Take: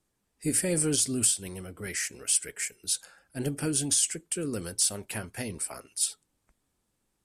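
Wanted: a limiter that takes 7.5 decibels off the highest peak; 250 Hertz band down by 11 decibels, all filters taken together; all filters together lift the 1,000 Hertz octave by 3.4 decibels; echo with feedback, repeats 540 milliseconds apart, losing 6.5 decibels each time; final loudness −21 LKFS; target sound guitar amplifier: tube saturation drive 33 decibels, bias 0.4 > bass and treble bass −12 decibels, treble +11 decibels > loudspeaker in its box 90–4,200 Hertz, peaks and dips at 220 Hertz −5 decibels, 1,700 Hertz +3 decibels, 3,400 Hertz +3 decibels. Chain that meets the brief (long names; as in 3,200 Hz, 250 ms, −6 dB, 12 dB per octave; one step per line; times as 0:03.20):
parametric band 250 Hz −7.5 dB
parametric band 1,000 Hz +5 dB
brickwall limiter −20.5 dBFS
repeating echo 540 ms, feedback 47%, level −6.5 dB
tube saturation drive 33 dB, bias 0.4
bass and treble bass −12 dB, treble +11 dB
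loudspeaker in its box 90–4,200 Hz, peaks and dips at 220 Hz −5 dB, 1,700 Hz +3 dB, 3,400 Hz +3 dB
level +20 dB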